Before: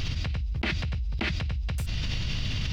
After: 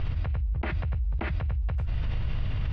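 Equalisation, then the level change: LPF 1200 Hz 12 dB/oct; bell 220 Hz -9 dB 1.6 oct; +3.5 dB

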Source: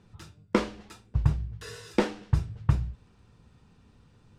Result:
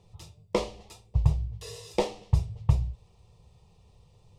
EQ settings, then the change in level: fixed phaser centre 630 Hz, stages 4; +3.0 dB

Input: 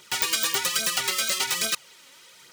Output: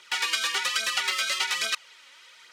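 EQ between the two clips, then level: band-pass 2000 Hz, Q 0.69; +2.5 dB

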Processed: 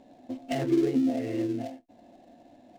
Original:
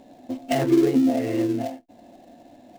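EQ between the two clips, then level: high shelf 9700 Hz -11 dB; dynamic EQ 1000 Hz, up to -5 dB, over -38 dBFS, Q 1.1; -5.5 dB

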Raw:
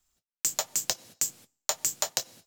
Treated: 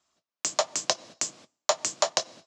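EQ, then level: speaker cabinet 150–6300 Hz, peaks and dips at 320 Hz +4 dB, 630 Hz +9 dB, 1100 Hz +8 dB; +4.0 dB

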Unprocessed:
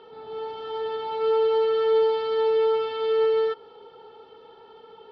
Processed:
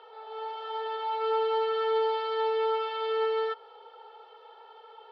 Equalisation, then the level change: inverse Chebyshev high-pass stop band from 210 Hz, stop band 50 dB; high shelf 4000 Hz -8 dB; +1.5 dB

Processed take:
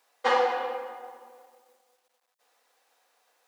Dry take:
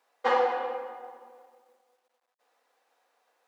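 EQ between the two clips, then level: high shelf 2700 Hz +9.5 dB; 0.0 dB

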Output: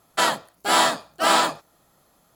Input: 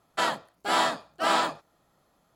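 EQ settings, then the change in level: high shelf 6700 Hz +11 dB; +5.0 dB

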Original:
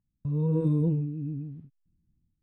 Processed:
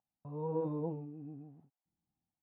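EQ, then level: band-pass 780 Hz, Q 5.9; +12.5 dB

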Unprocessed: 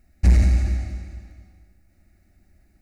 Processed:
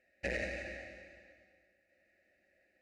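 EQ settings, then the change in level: vowel filter e; low shelf 480 Hz -10.5 dB; +11.5 dB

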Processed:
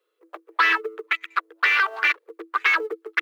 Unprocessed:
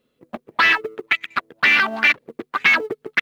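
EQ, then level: rippled Chebyshev high-pass 320 Hz, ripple 9 dB; high shelf 5000 Hz +5 dB; 0.0 dB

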